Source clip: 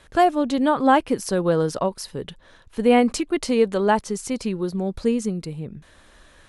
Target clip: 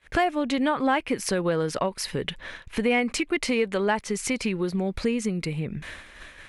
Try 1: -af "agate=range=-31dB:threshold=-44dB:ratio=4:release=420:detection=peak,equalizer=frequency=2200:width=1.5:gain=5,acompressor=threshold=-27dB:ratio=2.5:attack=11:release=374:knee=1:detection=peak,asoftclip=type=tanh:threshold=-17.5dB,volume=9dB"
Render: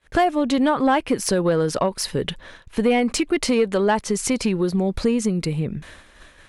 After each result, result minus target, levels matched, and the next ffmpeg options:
downward compressor: peak gain reduction −6.5 dB; 2,000 Hz band −5.0 dB
-af "agate=range=-31dB:threshold=-44dB:ratio=4:release=420:detection=peak,equalizer=frequency=2200:width=1.5:gain=5,acompressor=threshold=-37dB:ratio=2.5:attack=11:release=374:knee=1:detection=peak,asoftclip=type=tanh:threshold=-17.5dB,volume=9dB"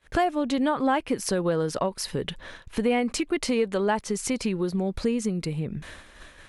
2,000 Hz band −4.5 dB
-af "agate=range=-31dB:threshold=-44dB:ratio=4:release=420:detection=peak,equalizer=frequency=2200:width=1.5:gain=12.5,acompressor=threshold=-37dB:ratio=2.5:attack=11:release=374:knee=1:detection=peak,asoftclip=type=tanh:threshold=-17.5dB,volume=9dB"

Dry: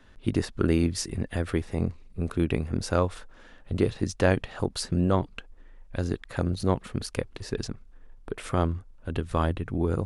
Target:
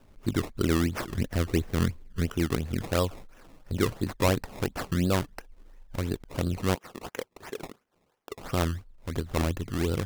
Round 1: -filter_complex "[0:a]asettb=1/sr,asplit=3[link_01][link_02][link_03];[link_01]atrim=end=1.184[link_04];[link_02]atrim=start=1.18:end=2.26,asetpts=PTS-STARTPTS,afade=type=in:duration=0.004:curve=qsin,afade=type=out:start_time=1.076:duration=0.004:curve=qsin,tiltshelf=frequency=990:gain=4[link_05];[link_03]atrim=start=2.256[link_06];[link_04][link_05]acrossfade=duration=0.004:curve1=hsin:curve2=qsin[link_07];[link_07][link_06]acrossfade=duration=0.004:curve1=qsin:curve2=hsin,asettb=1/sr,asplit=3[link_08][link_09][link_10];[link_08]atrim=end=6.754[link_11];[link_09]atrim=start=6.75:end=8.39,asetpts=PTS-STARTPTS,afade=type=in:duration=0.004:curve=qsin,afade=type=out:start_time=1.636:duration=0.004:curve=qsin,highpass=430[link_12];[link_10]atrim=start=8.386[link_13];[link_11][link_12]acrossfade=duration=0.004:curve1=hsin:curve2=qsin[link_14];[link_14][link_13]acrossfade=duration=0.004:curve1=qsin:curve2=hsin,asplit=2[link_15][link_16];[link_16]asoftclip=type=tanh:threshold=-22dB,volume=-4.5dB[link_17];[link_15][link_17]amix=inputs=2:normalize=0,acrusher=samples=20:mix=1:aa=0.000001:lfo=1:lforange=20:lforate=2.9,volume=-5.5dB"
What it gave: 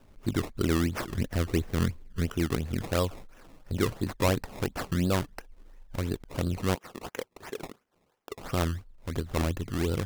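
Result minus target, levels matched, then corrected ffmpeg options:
soft clipping: distortion +10 dB
-filter_complex "[0:a]asettb=1/sr,asplit=3[link_01][link_02][link_03];[link_01]atrim=end=1.184[link_04];[link_02]atrim=start=1.18:end=2.26,asetpts=PTS-STARTPTS,afade=type=in:duration=0.004:curve=qsin,afade=type=out:start_time=1.076:duration=0.004:curve=qsin,tiltshelf=frequency=990:gain=4[link_05];[link_03]atrim=start=2.256[link_06];[link_04][link_05]acrossfade=duration=0.004:curve1=hsin:curve2=qsin[link_07];[link_07][link_06]acrossfade=duration=0.004:curve1=qsin:curve2=hsin,asettb=1/sr,asplit=3[link_08][link_09][link_10];[link_08]atrim=end=6.754[link_11];[link_09]atrim=start=6.75:end=8.39,asetpts=PTS-STARTPTS,afade=type=in:duration=0.004:curve=qsin,afade=type=out:start_time=1.636:duration=0.004:curve=qsin,highpass=430[link_12];[link_10]atrim=start=8.386[link_13];[link_11][link_12]acrossfade=duration=0.004:curve1=hsin:curve2=qsin[link_14];[link_14][link_13]acrossfade=duration=0.004:curve1=qsin:curve2=hsin,asplit=2[link_15][link_16];[link_16]asoftclip=type=tanh:threshold=-13dB,volume=-4.5dB[link_17];[link_15][link_17]amix=inputs=2:normalize=0,acrusher=samples=20:mix=1:aa=0.000001:lfo=1:lforange=20:lforate=2.9,volume=-5.5dB"

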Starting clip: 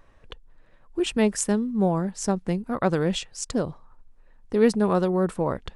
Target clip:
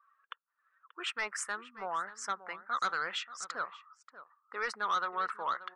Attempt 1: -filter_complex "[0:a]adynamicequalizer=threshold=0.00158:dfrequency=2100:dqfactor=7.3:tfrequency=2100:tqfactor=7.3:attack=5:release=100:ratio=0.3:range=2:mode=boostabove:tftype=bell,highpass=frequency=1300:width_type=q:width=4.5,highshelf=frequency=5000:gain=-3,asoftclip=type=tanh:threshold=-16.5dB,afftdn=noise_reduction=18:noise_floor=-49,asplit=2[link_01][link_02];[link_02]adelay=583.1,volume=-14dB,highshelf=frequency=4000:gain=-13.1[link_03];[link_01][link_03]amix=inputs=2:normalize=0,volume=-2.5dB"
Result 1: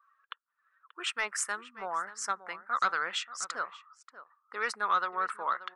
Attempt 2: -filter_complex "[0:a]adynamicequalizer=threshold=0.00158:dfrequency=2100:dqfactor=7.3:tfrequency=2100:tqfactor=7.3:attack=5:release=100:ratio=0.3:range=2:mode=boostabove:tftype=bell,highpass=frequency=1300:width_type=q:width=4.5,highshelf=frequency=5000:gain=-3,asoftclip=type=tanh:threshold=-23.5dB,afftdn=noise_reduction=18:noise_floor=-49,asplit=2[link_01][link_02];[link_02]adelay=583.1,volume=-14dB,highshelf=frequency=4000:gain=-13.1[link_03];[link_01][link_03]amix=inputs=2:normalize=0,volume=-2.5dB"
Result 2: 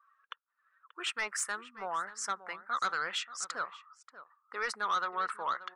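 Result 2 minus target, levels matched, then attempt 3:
8,000 Hz band +4.0 dB
-filter_complex "[0:a]adynamicequalizer=threshold=0.00158:dfrequency=2100:dqfactor=7.3:tfrequency=2100:tqfactor=7.3:attack=5:release=100:ratio=0.3:range=2:mode=boostabove:tftype=bell,highpass=frequency=1300:width_type=q:width=4.5,highshelf=frequency=5000:gain=-11,asoftclip=type=tanh:threshold=-23.5dB,afftdn=noise_reduction=18:noise_floor=-49,asplit=2[link_01][link_02];[link_02]adelay=583.1,volume=-14dB,highshelf=frequency=4000:gain=-13.1[link_03];[link_01][link_03]amix=inputs=2:normalize=0,volume=-2.5dB"

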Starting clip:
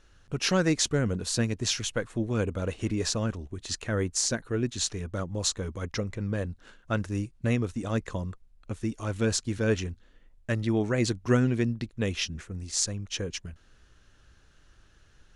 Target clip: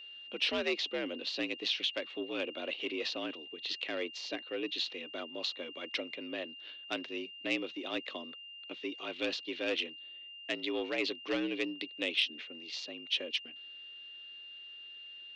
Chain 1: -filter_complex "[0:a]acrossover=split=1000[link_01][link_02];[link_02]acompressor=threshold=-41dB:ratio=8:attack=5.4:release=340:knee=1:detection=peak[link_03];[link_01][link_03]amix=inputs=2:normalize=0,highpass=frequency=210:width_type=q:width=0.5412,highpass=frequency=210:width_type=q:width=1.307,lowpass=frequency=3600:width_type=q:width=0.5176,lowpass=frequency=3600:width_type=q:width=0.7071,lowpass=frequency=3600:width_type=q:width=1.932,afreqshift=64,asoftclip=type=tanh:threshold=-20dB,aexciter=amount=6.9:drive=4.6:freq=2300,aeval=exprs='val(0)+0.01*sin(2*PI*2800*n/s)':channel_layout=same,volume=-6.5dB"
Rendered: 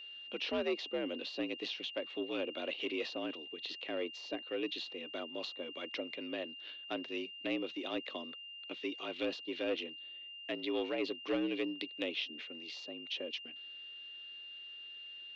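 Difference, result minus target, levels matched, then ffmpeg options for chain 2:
downward compressor: peak gain reduction +9.5 dB
-filter_complex "[0:a]acrossover=split=1000[link_01][link_02];[link_02]acompressor=threshold=-30dB:ratio=8:attack=5.4:release=340:knee=1:detection=peak[link_03];[link_01][link_03]amix=inputs=2:normalize=0,highpass=frequency=210:width_type=q:width=0.5412,highpass=frequency=210:width_type=q:width=1.307,lowpass=frequency=3600:width_type=q:width=0.5176,lowpass=frequency=3600:width_type=q:width=0.7071,lowpass=frequency=3600:width_type=q:width=1.932,afreqshift=64,asoftclip=type=tanh:threshold=-20dB,aexciter=amount=6.9:drive=4.6:freq=2300,aeval=exprs='val(0)+0.01*sin(2*PI*2800*n/s)':channel_layout=same,volume=-6.5dB"

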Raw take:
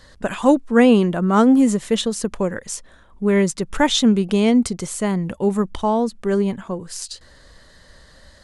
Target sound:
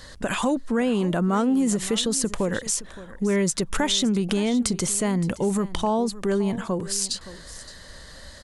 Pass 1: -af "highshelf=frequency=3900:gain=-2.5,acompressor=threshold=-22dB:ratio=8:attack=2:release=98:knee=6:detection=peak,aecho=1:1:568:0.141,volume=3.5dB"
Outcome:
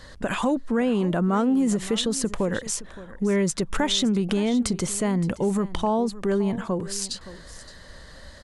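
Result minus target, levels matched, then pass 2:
8,000 Hz band −3.5 dB
-af "highshelf=frequency=3900:gain=5.5,acompressor=threshold=-22dB:ratio=8:attack=2:release=98:knee=6:detection=peak,aecho=1:1:568:0.141,volume=3.5dB"

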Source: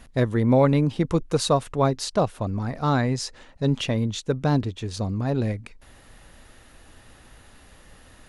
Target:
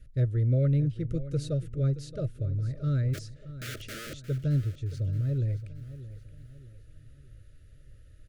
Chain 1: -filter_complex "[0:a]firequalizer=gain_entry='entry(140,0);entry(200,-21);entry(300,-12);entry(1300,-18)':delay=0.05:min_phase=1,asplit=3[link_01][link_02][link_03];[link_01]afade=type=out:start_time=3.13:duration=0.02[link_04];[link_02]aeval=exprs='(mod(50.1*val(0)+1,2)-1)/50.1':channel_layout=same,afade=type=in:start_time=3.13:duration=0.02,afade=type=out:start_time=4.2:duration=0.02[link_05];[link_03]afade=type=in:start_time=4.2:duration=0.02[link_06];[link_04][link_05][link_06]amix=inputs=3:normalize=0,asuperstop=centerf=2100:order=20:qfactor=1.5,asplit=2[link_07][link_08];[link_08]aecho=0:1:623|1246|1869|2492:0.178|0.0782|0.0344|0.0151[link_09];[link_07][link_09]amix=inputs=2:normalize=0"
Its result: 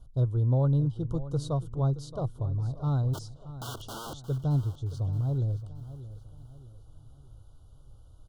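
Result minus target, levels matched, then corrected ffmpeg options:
1,000 Hz band +11.5 dB
-filter_complex "[0:a]firequalizer=gain_entry='entry(140,0);entry(200,-21);entry(300,-12);entry(1300,-18)':delay=0.05:min_phase=1,asplit=3[link_01][link_02][link_03];[link_01]afade=type=out:start_time=3.13:duration=0.02[link_04];[link_02]aeval=exprs='(mod(50.1*val(0)+1,2)-1)/50.1':channel_layout=same,afade=type=in:start_time=3.13:duration=0.02,afade=type=out:start_time=4.2:duration=0.02[link_05];[link_03]afade=type=in:start_time=4.2:duration=0.02[link_06];[link_04][link_05][link_06]amix=inputs=3:normalize=0,asuperstop=centerf=890:order=20:qfactor=1.5,asplit=2[link_07][link_08];[link_08]aecho=0:1:623|1246|1869|2492:0.178|0.0782|0.0344|0.0151[link_09];[link_07][link_09]amix=inputs=2:normalize=0"

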